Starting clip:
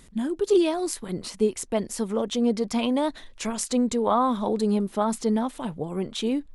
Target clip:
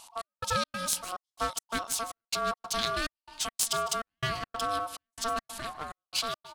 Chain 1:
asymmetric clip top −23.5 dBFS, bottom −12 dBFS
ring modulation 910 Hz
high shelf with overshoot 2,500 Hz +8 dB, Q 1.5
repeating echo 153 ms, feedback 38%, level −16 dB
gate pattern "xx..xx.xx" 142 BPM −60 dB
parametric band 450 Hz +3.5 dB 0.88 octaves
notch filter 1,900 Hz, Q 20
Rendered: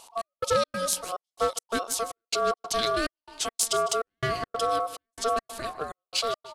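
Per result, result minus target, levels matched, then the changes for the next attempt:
500 Hz band +5.5 dB; asymmetric clip: distortion −6 dB
change: parametric band 450 Hz −8.5 dB 0.88 octaves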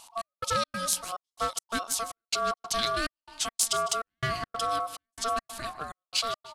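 asymmetric clip: distortion −6 dB
change: asymmetric clip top −35.5 dBFS, bottom −12 dBFS

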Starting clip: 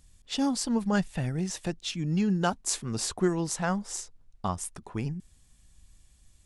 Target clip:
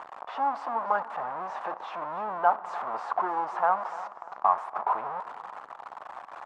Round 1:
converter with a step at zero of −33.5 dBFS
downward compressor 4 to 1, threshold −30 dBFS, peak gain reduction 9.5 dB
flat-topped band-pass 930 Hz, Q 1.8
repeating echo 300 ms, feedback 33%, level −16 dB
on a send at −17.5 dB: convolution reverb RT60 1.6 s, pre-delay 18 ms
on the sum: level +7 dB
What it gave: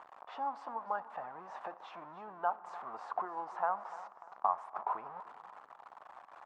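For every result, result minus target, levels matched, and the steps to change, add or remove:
downward compressor: peak gain reduction +9.5 dB; converter with a step at zero: distortion −8 dB
remove: downward compressor 4 to 1, threshold −30 dBFS, peak gain reduction 9.5 dB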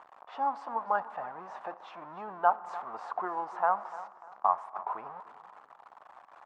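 converter with a step at zero: distortion −8 dB
change: converter with a step at zero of −22 dBFS

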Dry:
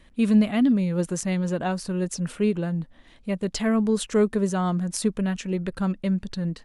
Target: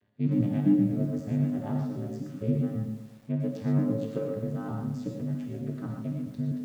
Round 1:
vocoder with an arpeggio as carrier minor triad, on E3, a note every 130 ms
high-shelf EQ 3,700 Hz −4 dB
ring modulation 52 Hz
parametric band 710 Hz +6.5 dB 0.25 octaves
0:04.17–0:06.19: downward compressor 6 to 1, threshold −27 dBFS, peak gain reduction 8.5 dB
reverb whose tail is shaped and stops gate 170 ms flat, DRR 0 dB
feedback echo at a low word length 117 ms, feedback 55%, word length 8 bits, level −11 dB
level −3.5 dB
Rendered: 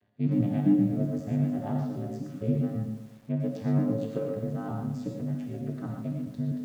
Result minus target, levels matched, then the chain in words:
1,000 Hz band +2.5 dB
vocoder with an arpeggio as carrier minor triad, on E3, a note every 130 ms
high-shelf EQ 3,700 Hz −4 dB
ring modulation 52 Hz
0:04.17–0:06.19: downward compressor 6 to 1, threshold −27 dBFS, peak gain reduction 8.5 dB
reverb whose tail is shaped and stops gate 170 ms flat, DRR 0 dB
feedback echo at a low word length 117 ms, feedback 55%, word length 8 bits, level −11 dB
level −3.5 dB

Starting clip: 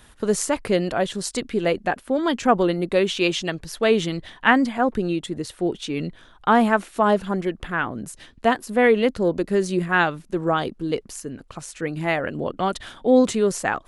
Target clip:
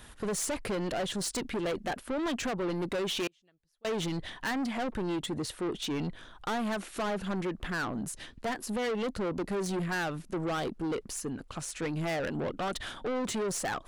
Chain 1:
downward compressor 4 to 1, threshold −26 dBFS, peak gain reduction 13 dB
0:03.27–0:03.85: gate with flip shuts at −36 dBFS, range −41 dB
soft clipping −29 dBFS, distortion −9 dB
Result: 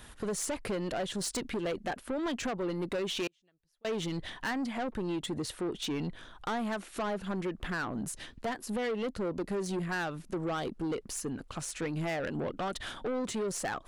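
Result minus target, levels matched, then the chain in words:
downward compressor: peak gain reduction +5 dB
downward compressor 4 to 1, threshold −19.5 dBFS, peak gain reduction 8 dB
0:03.27–0:03.85: gate with flip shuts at −36 dBFS, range −41 dB
soft clipping −29 dBFS, distortion −6 dB

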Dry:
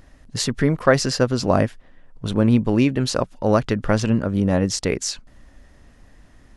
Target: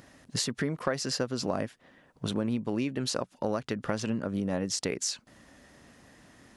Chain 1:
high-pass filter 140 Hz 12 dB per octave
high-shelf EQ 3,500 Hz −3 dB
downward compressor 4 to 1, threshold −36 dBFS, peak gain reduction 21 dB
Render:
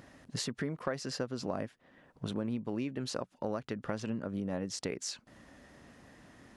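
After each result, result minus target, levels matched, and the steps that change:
downward compressor: peak gain reduction +5 dB; 8,000 Hz band −2.5 dB
change: downward compressor 4 to 1, threshold −29 dBFS, peak gain reduction 16 dB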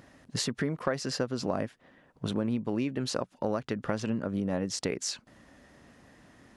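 8,000 Hz band −2.5 dB
change: high-shelf EQ 3,500 Hz +3.5 dB

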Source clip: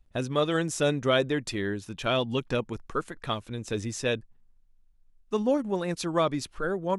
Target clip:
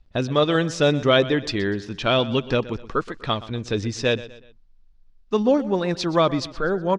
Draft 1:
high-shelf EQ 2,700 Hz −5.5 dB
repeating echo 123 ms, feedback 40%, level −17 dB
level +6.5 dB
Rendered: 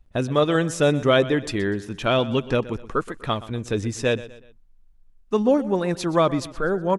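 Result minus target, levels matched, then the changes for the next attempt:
4,000 Hz band −4.0 dB
add first: low-pass with resonance 4,800 Hz, resonance Q 2.1

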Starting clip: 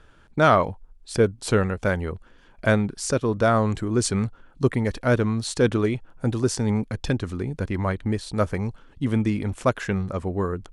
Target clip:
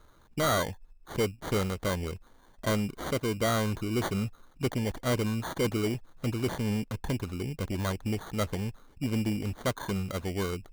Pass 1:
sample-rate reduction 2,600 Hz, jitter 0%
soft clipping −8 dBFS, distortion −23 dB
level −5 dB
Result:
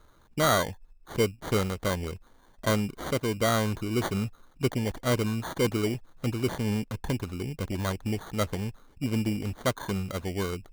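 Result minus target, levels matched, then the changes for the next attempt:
soft clipping: distortion −10 dB
change: soft clipping −16 dBFS, distortion −13 dB

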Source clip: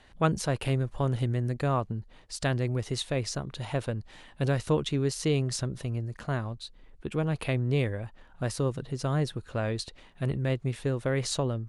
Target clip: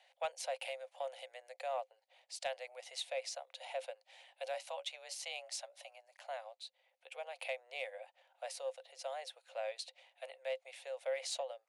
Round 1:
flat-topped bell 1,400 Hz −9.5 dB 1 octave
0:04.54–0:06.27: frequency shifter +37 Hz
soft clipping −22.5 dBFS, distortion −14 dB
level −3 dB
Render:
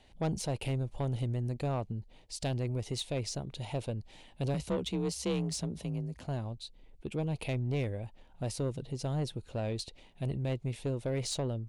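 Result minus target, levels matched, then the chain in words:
500 Hz band −3.5 dB
Chebyshev high-pass with heavy ripple 510 Hz, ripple 6 dB
flat-topped bell 1,400 Hz −9.5 dB 1 octave
0:04.54–0:06.27: frequency shifter +37 Hz
soft clipping −22.5 dBFS, distortion −28 dB
level −3 dB

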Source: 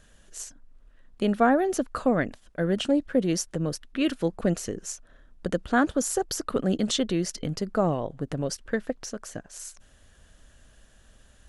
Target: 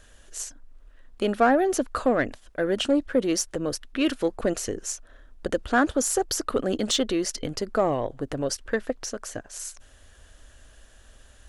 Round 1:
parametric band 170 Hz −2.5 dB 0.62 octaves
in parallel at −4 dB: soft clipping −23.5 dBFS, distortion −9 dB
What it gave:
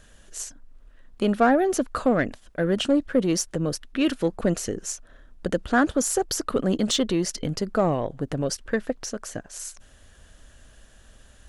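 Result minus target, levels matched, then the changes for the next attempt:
125 Hz band +6.0 dB
change: parametric band 170 Hz −13.5 dB 0.62 octaves

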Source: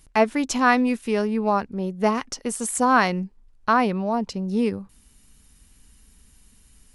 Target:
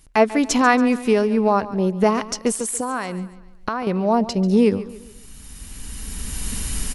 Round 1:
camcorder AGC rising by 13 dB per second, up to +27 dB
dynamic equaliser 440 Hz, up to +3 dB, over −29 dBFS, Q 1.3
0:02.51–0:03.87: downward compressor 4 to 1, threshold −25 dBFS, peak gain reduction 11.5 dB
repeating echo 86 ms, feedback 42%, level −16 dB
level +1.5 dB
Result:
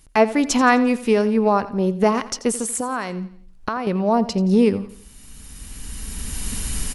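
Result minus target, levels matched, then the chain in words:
echo 55 ms early
camcorder AGC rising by 13 dB per second, up to +27 dB
dynamic equaliser 440 Hz, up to +3 dB, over −29 dBFS, Q 1.3
0:02.51–0:03.87: downward compressor 4 to 1, threshold −25 dBFS, peak gain reduction 11.5 dB
repeating echo 141 ms, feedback 42%, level −16 dB
level +1.5 dB

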